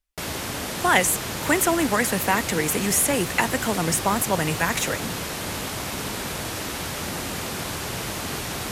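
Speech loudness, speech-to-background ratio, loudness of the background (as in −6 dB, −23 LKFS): −22.5 LKFS, 6.5 dB, −29.0 LKFS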